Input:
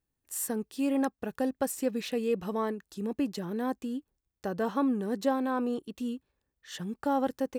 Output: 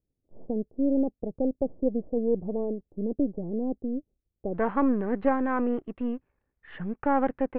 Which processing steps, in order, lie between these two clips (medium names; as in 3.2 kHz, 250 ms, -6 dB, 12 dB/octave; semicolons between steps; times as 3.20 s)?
partial rectifier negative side -7 dB; steep low-pass 640 Hz 36 dB/octave, from 4.53 s 2.4 kHz; trim +6 dB